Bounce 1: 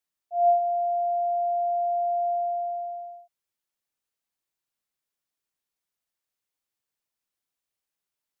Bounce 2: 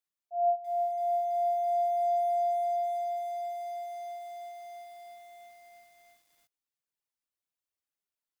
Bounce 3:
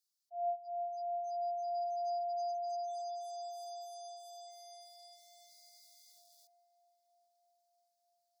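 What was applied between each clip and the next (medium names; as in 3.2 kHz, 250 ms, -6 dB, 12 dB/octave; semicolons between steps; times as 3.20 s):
reverb removal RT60 0.68 s; bit-crushed delay 330 ms, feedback 80%, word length 8-bit, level -10 dB; trim -5.5 dB
resonant high shelf 3.3 kHz +12.5 dB, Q 3; spectral gate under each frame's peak -25 dB strong; filtered feedback delay 937 ms, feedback 68%, low-pass 1.2 kHz, level -20 dB; trim -8.5 dB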